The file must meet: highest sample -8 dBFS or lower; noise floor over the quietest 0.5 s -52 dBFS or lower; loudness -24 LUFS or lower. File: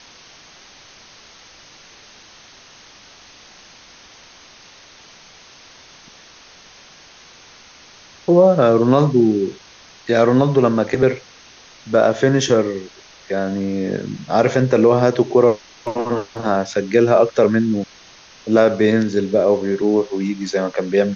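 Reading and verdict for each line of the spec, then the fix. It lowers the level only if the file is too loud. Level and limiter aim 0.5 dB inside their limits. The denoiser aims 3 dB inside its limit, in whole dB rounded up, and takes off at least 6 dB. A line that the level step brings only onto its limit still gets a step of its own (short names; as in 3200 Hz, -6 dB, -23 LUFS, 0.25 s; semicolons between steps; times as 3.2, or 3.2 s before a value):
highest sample -3.5 dBFS: fail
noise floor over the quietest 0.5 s -45 dBFS: fail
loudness -17.0 LUFS: fail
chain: gain -7.5 dB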